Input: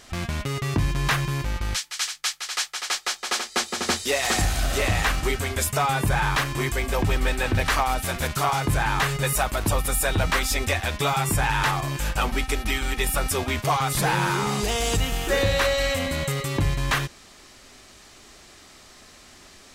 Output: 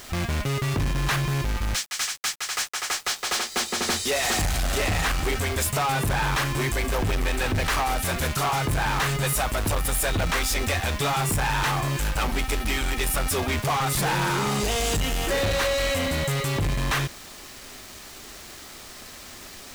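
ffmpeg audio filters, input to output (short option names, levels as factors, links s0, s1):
-filter_complex "[0:a]asettb=1/sr,asplit=3[s0][s1][s2];[s0]atrim=end=1.654[s3];[s1]atrim=start=1.65:end=2.98,asetpts=PTS-STARTPTS,afade=t=in:d=0.004:c=qsin,afade=t=out:st=1.326:d=0.004:c=qsin,adynamicequalizer=threshold=0.00891:dfrequency=3900:dqfactor=1.3:tfrequency=3900:tqfactor=1.3:attack=5:release=100:ratio=0.375:range=3:mode=cutabove:tftype=bell[s4];[s2]atrim=start=2.976[s5];[s3][s4]acrossfade=d=0.004:c1=hsin:c2=qsin[s6];[s6][s5]acrossfade=d=0.004:c1=qsin:c2=hsin,asoftclip=type=tanh:threshold=0.0447,acrusher=bits=7:mix=0:aa=0.000001,volume=1.88"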